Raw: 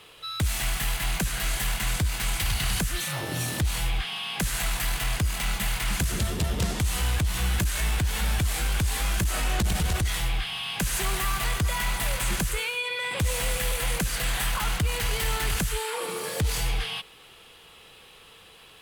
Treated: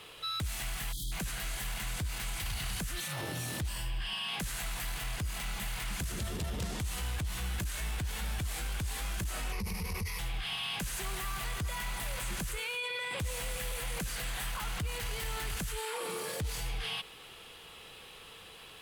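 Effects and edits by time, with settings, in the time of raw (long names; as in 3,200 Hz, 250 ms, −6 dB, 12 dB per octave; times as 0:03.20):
0:00.92–0:01.12: time-frequency box erased 360–3,100 Hz
0:03.68–0:04.28: EQ curve with evenly spaced ripples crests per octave 1.3, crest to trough 9 dB
0:09.52–0:10.19: EQ curve with evenly spaced ripples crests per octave 0.85, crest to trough 15 dB
whole clip: brickwall limiter −29 dBFS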